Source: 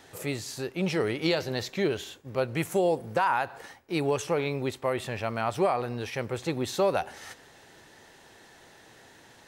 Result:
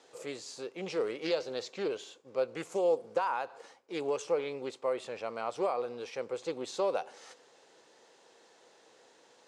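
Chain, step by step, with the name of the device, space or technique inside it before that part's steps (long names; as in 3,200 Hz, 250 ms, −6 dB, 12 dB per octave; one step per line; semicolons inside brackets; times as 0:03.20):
full-range speaker at full volume (highs frequency-modulated by the lows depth 0.18 ms; loudspeaker in its box 290–8,900 Hz, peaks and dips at 490 Hz +9 dB, 1,100 Hz +3 dB, 1,800 Hz −6 dB, 4,800 Hz +3 dB, 7,000 Hz +3 dB)
level −8 dB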